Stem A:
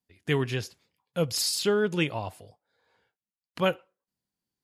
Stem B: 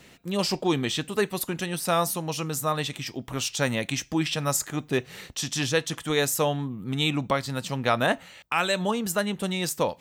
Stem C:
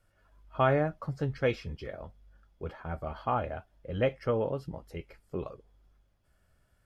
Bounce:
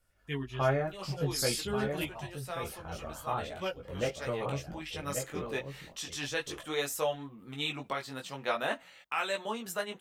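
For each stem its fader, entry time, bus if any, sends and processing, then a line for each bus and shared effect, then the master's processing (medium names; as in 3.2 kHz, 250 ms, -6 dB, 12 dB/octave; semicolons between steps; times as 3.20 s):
-7.0 dB, 0.00 s, no send, no echo send, expander on every frequency bin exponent 1.5
4.66 s -12 dB -> 5.26 s -5 dB, 0.60 s, no send, no echo send, tone controls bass -12 dB, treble -10 dB
-1.5 dB, 0.00 s, no send, echo send -7.5 dB, none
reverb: none
echo: delay 1135 ms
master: treble shelf 3.9 kHz +8.5 dB; chorus voices 6, 0.41 Hz, delay 18 ms, depth 4.6 ms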